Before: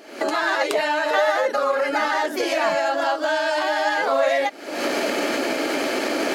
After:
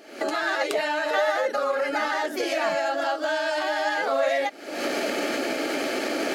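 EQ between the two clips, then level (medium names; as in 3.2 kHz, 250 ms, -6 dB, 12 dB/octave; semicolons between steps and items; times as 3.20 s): band-stop 1 kHz, Q 6.5; -3.5 dB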